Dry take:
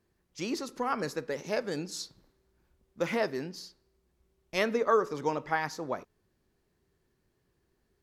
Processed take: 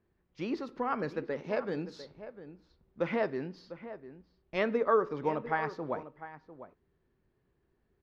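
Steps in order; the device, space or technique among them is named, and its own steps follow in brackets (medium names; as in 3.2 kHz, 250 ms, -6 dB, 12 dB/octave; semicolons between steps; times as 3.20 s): shout across a valley (distance through air 320 m; echo from a far wall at 120 m, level -13 dB)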